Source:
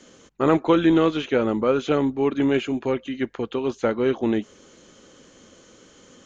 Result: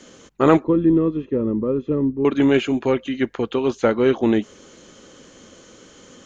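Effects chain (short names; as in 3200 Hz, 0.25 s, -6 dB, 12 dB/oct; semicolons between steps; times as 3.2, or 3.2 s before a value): 0.64–2.25 running mean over 59 samples; gain +4.5 dB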